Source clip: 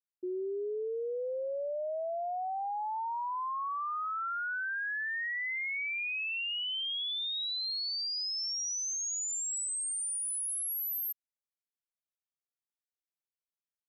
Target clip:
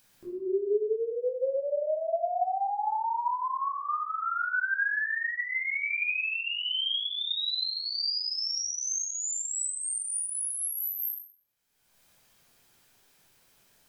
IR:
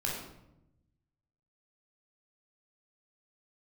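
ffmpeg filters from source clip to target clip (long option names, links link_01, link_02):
-filter_complex "[0:a]acompressor=mode=upward:threshold=-43dB:ratio=2.5[link_01];[1:a]atrim=start_sample=2205[link_02];[link_01][link_02]afir=irnorm=-1:irlink=0"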